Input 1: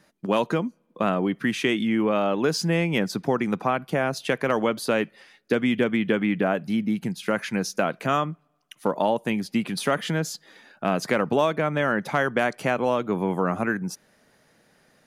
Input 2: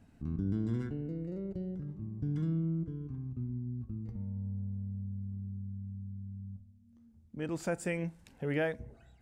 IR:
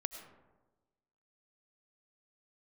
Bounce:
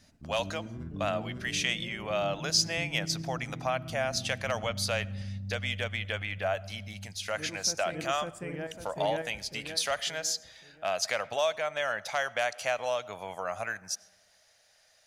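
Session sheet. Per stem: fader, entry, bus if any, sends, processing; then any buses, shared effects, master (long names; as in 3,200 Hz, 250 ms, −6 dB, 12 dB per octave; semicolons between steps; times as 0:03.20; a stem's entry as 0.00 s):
−9.5 dB, 0.00 s, send −11.5 dB, no echo send, drawn EQ curve 100 Hz 0 dB, 150 Hz −18 dB, 360 Hz −19 dB, 640 Hz +5 dB, 980 Hz −3 dB, 6,000 Hz +14 dB, 11,000 Hz +4 dB
−0.5 dB, 0.00 s, send −15.5 dB, echo send −3.5 dB, speech leveller within 5 dB 2 s; shaped tremolo saw up 6 Hz, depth 50%; automatic ducking −9 dB, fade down 0.30 s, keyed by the first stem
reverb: on, RT60 1.2 s, pre-delay 60 ms
echo: repeating echo 550 ms, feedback 42%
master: no processing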